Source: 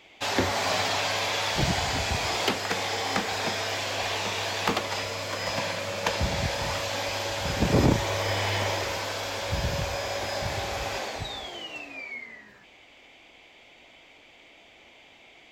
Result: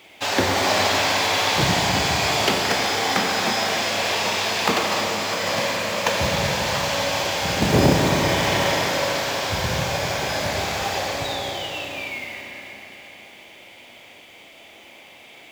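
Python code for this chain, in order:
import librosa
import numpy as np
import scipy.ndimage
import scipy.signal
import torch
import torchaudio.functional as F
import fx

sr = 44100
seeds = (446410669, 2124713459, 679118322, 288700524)

p1 = scipy.signal.sosfilt(scipy.signal.butter(2, 89.0, 'highpass', fs=sr, output='sos'), x)
p2 = fx.quant_companded(p1, sr, bits=4)
p3 = p1 + F.gain(torch.from_numpy(p2), -4.0).numpy()
y = fx.rev_schroeder(p3, sr, rt60_s=3.9, comb_ms=29, drr_db=0.5)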